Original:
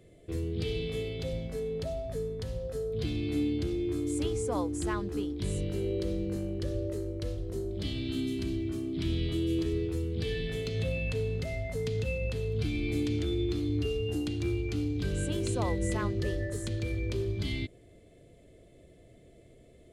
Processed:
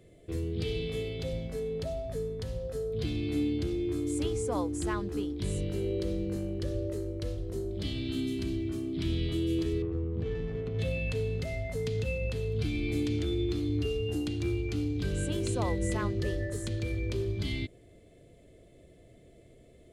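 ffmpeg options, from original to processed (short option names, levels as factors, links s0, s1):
-filter_complex "[0:a]asettb=1/sr,asplit=3[s0][s1][s2];[s0]atrim=end=9.824[s3];[s1]atrim=start=9.82:end=10.79,asetpts=PTS-STARTPTS,afade=t=in:d=0.004:c=qsin,afade=t=out:st=0.966:d=0.004:c=qsin,adynamicsmooth=sensitivity=2:basefreq=790[s4];[s2]atrim=start=10.786[s5];[s3][s4]acrossfade=d=0.004:c1=hsin:c2=qsin[s6];[s6][s5]acrossfade=d=0.004:c1=qsin:c2=hsin"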